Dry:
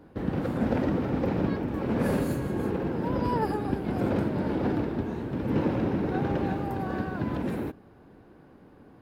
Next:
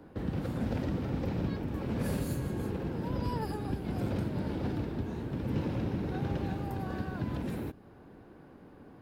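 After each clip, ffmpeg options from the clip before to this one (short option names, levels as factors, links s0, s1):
-filter_complex "[0:a]acrossover=split=150|3000[s0][s1][s2];[s1]acompressor=threshold=0.00794:ratio=2[s3];[s0][s3][s2]amix=inputs=3:normalize=0"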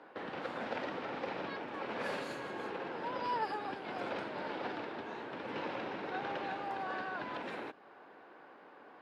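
-af "highpass=720,lowpass=3300,volume=2.11"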